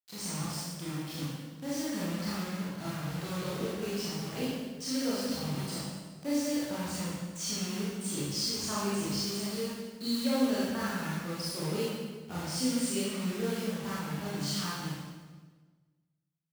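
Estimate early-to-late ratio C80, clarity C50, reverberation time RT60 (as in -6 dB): 1.0 dB, -2.5 dB, 1.4 s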